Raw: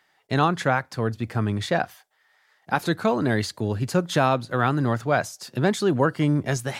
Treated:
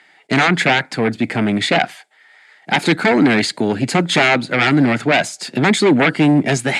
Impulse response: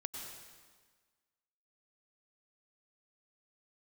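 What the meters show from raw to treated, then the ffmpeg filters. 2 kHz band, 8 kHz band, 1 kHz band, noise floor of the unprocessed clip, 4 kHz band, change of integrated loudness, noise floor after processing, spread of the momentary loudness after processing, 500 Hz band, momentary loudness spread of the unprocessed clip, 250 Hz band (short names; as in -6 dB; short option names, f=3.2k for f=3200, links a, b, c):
+12.5 dB, +9.0 dB, +5.5 dB, -66 dBFS, +13.5 dB, +8.5 dB, -51 dBFS, 6 LU, +6.0 dB, 6 LU, +10.0 dB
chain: -af "aeval=exprs='0.473*sin(PI/2*3.55*val(0)/0.473)':c=same,highpass=f=160:w=0.5412,highpass=f=160:w=1.3066,equalizer=f=280:t=q:w=4:g=4,equalizer=f=530:t=q:w=4:g=-4,equalizer=f=1.1k:t=q:w=4:g=-8,equalizer=f=2.2k:t=q:w=4:g=7,equalizer=f=5.8k:t=q:w=4:g=-9,lowpass=f=9.1k:w=0.5412,lowpass=f=9.1k:w=1.3066,volume=-1.5dB"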